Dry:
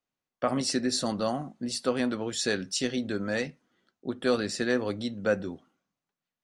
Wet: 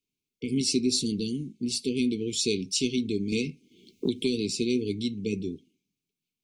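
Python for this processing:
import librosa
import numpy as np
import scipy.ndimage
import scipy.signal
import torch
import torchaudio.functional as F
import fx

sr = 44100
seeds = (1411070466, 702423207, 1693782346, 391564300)

y = fx.brickwall_bandstop(x, sr, low_hz=470.0, high_hz=2100.0)
y = fx.band_squash(y, sr, depth_pct=100, at=(3.32, 4.5))
y = y * 10.0 ** (3.0 / 20.0)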